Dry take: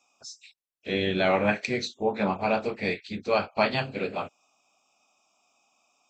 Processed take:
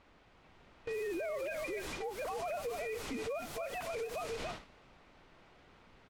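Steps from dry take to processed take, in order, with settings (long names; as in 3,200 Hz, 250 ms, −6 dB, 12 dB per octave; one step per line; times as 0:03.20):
three sine waves on the formant tracks
spectral tilt −1.5 dB per octave
single-tap delay 288 ms −11.5 dB
background noise pink −41 dBFS
noise gate with hold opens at −28 dBFS
low-shelf EQ 240 Hz −5.5 dB
low-pass that shuts in the quiet parts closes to 2,600 Hz, open at −24.5 dBFS
automatic gain control gain up to 3 dB
notch filter 1,700 Hz, Q 20
downward compressor 6 to 1, threshold −31 dBFS, peak gain reduction 16.5 dB
brickwall limiter −33.5 dBFS, peak gain reduction 11.5 dB
every ending faded ahead of time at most 130 dB per second
level +2 dB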